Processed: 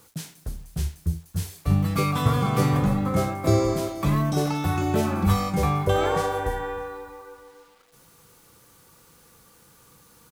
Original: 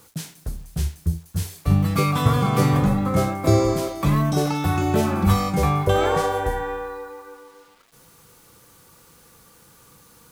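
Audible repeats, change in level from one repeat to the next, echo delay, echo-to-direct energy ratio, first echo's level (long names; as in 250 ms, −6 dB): 3, −7.5 dB, 307 ms, −18.5 dB, −19.5 dB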